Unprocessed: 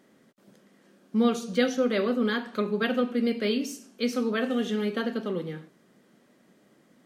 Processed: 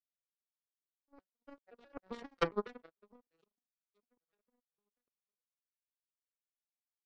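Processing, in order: vocoder on a broken chord major triad, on F3, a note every 141 ms; Doppler pass-by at 2.39 s, 24 m/s, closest 1.9 m; high-pass 310 Hz 24 dB/octave; in parallel at +2 dB: compression, threshold -58 dBFS, peak gain reduction 21 dB; on the sum: power-law waveshaper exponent 3; trim +13 dB

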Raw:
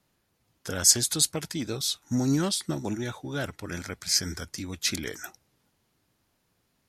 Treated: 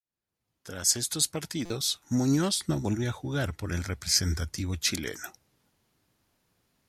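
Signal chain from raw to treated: fade-in on the opening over 1.68 s; 2.54–4.84 s: peaking EQ 66 Hz +12.5 dB 1.6 oct; buffer glitch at 1.65 s, samples 256, times 8

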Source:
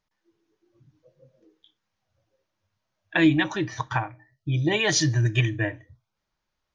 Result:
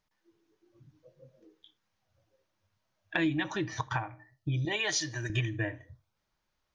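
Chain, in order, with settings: 4.65–5.30 s: high-pass 670 Hz 6 dB/octave; filtered feedback delay 78 ms, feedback 28%, low-pass 2 kHz, level -23.5 dB; compression 2.5:1, threshold -31 dBFS, peak gain reduction 11.5 dB

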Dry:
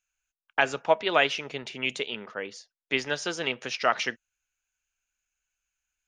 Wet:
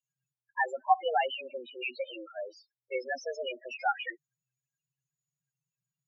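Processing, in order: loudest bins only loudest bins 4; frequency shift +120 Hz

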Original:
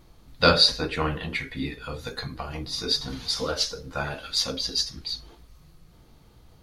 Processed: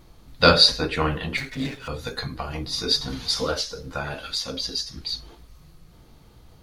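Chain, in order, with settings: 1.37–1.88 s: comb filter that takes the minimum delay 7.4 ms; 3.56–5.13 s: compression 6:1, threshold -28 dBFS, peak gain reduction 8.5 dB; trim +3 dB

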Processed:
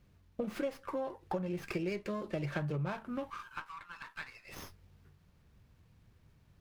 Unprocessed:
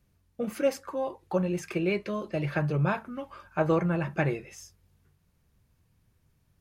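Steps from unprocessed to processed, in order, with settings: compression 6:1, threshold -38 dBFS, peak gain reduction 17 dB; 3.30–4.49 s: steep high-pass 930 Hz 72 dB/octave; sliding maximum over 5 samples; trim +4 dB

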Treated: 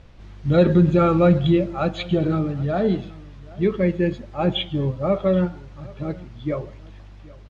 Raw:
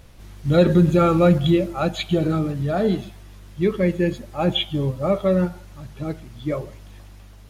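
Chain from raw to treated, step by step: distance through air 140 m; delay 778 ms -22 dB

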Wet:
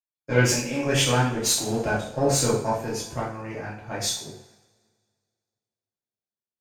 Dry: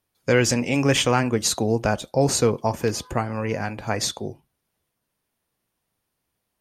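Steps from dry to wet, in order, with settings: single-diode clipper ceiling -16 dBFS; two-slope reverb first 0.57 s, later 3.8 s, from -21 dB, DRR -6 dB; three bands expanded up and down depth 70%; trim -8 dB

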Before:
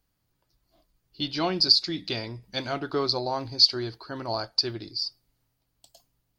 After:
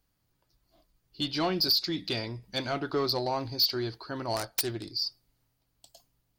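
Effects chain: 4.36–4.92 s: self-modulated delay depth 0.44 ms; saturation -20 dBFS, distortion -8 dB

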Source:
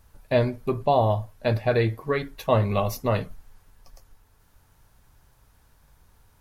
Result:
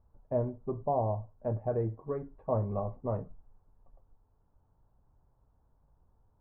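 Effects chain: low-pass 1 kHz 24 dB/octave; trim -9 dB

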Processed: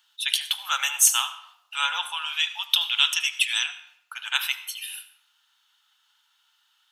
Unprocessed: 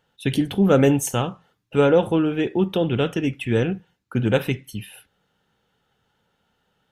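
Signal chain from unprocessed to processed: steep high-pass 960 Hz 48 dB/octave; resonant high shelf 2.6 kHz +7.5 dB, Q 1.5, from 2.22 s +13.5 dB, from 3.66 s +6 dB; reverberation RT60 0.85 s, pre-delay 72 ms, DRR 13.5 dB; trim +2.5 dB

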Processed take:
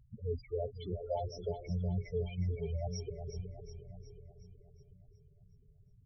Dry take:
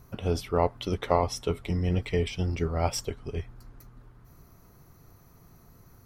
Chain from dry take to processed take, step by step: loudest bins only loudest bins 4; two-band feedback delay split 380 Hz, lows 508 ms, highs 366 ms, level -9 dB; trim -6.5 dB

